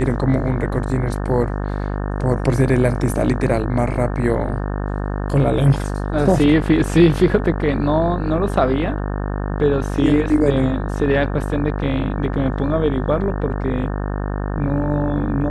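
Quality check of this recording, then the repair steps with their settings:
buzz 50 Hz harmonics 36 -23 dBFS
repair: de-hum 50 Hz, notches 36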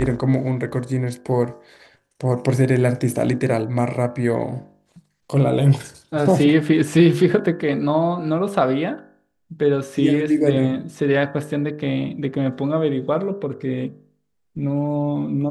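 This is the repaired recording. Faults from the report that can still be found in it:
none

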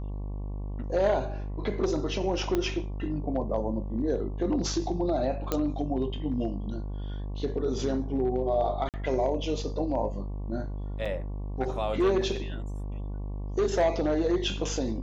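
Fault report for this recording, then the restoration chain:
buzz 50 Hz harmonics 23 -34 dBFS
2.55 pop -14 dBFS
5.52 pop -12 dBFS
8.89–8.94 gap 48 ms
11.05–11.06 gap 6 ms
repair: de-click; de-hum 50 Hz, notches 23; interpolate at 8.89, 48 ms; interpolate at 11.05, 6 ms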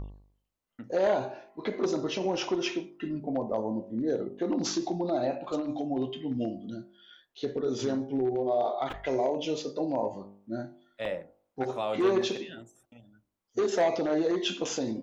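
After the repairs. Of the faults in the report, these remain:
2.55 pop

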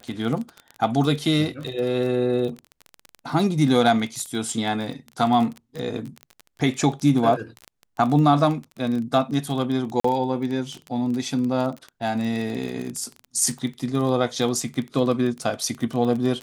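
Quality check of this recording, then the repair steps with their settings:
crackle 21/s -27 dBFS
10–10.04 gap 44 ms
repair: de-click; interpolate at 10, 44 ms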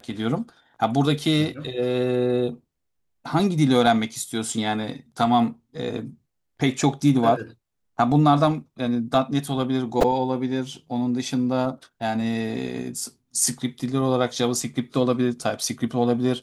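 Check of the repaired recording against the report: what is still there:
none

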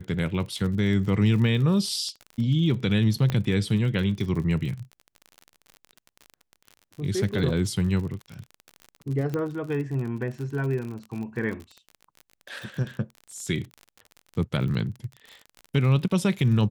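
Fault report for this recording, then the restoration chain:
crackle 45/s -33 dBFS
3.3 pop -14 dBFS
9.34 pop -17 dBFS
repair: de-click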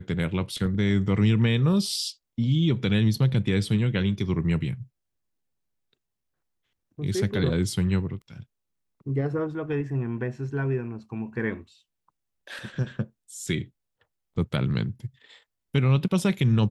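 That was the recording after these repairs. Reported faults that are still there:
none

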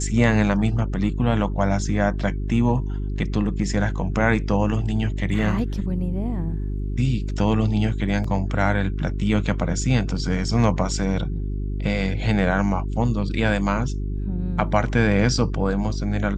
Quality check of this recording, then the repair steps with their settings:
hum 50 Hz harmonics 8 -26 dBFS
8.24 gap 3.9 ms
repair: de-hum 50 Hz, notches 8; interpolate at 8.24, 3.9 ms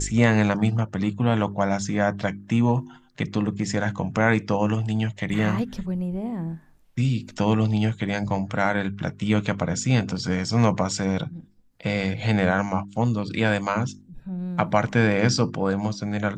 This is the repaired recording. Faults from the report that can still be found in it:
none

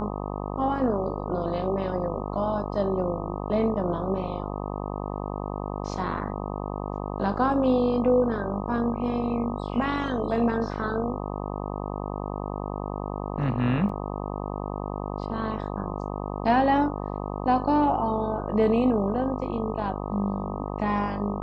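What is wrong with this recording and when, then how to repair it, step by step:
buzz 50 Hz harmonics 25 -32 dBFS
13.89 gap 4.5 ms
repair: de-hum 50 Hz, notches 25; interpolate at 13.89, 4.5 ms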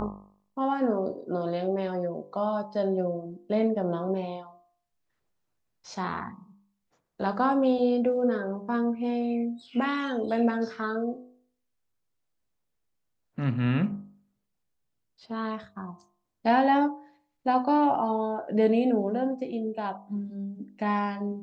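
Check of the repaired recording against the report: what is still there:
none

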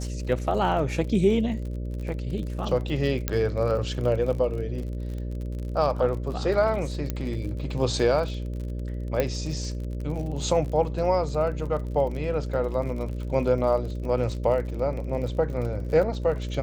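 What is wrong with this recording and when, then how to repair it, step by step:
buzz 60 Hz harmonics 10 -31 dBFS
crackle 48/s -34 dBFS
3.28 pop -9 dBFS
7.1 pop -14 dBFS
9.2 pop -11 dBFS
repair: de-click; de-hum 60 Hz, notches 10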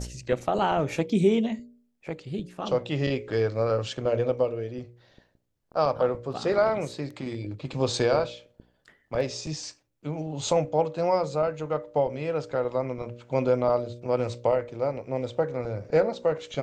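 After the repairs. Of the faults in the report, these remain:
3.28 pop
7.1 pop
9.2 pop

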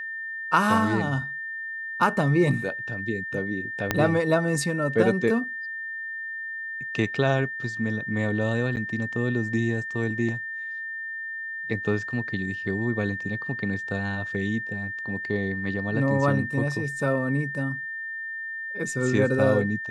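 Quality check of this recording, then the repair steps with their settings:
tone 1800 Hz -31 dBFS
3.91 pop -7 dBFS
8.76–8.77 gap 8.7 ms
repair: de-click; notch 1800 Hz, Q 30; interpolate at 8.76, 8.7 ms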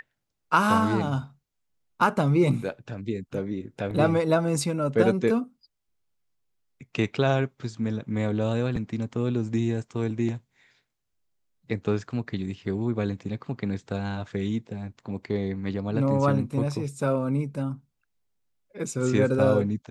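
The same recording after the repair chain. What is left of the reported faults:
3.91 pop

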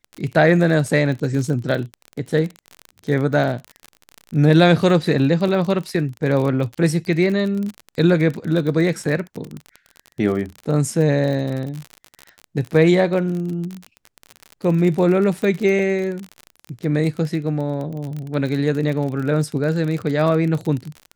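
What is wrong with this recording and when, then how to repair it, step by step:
crackle 36/s -25 dBFS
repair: de-click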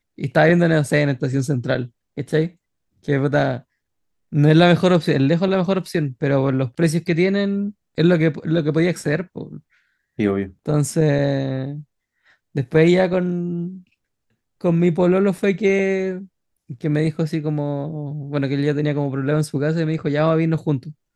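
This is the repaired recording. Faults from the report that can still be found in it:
none

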